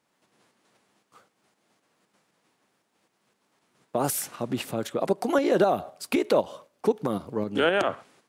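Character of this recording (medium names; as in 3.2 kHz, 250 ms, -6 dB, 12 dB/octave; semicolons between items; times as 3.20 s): tremolo saw up 3.9 Hz, depth 45%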